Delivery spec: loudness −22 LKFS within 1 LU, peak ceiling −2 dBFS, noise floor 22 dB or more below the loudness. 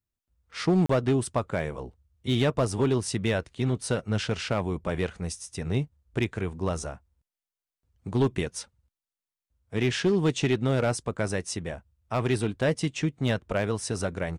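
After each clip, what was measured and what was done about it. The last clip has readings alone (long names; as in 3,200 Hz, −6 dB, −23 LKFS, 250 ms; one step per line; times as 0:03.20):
share of clipped samples 0.6%; peaks flattened at −17.0 dBFS; number of dropouts 1; longest dropout 34 ms; integrated loudness −28.0 LKFS; sample peak −17.0 dBFS; target loudness −22.0 LKFS
→ clipped peaks rebuilt −17 dBFS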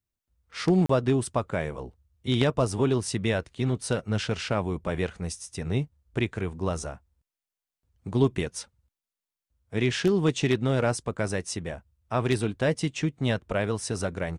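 share of clipped samples 0.0%; number of dropouts 1; longest dropout 34 ms
→ repair the gap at 0:00.86, 34 ms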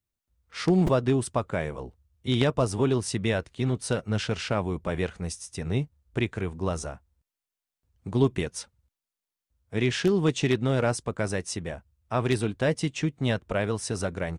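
number of dropouts 0; integrated loudness −27.5 LKFS; sample peak −8.0 dBFS; target loudness −22.0 LKFS
→ level +5.5 dB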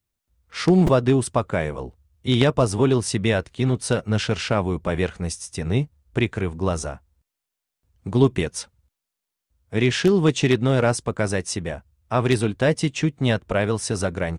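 integrated loudness −22.0 LKFS; sample peak −2.5 dBFS; background noise floor −84 dBFS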